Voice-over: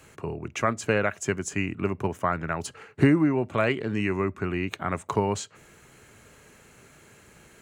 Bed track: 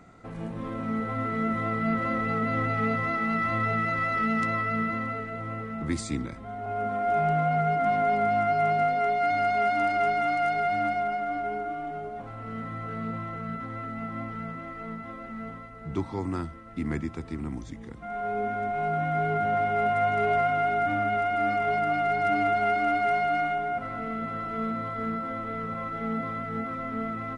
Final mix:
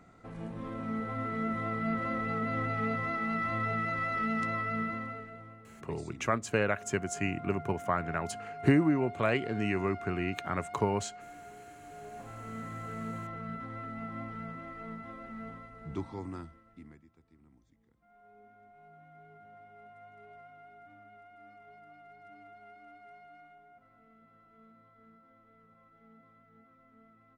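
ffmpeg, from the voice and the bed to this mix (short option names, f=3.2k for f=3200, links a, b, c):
-filter_complex "[0:a]adelay=5650,volume=-4.5dB[a];[1:a]volume=8dB,afade=t=out:st=4.82:d=0.77:silence=0.211349,afade=t=in:st=11.81:d=0.5:silence=0.211349,afade=t=out:st=15.8:d=1.18:silence=0.0668344[b];[a][b]amix=inputs=2:normalize=0"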